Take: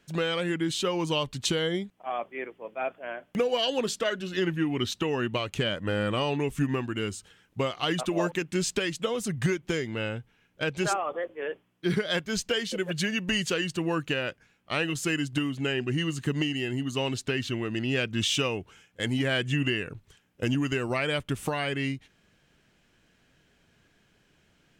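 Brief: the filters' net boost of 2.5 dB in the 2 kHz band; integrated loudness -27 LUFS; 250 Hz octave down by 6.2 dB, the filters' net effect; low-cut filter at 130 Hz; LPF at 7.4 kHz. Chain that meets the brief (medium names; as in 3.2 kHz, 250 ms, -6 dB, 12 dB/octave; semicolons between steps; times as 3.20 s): high-pass 130 Hz; low-pass 7.4 kHz; peaking EQ 250 Hz -8.5 dB; peaking EQ 2 kHz +3.5 dB; trim +3 dB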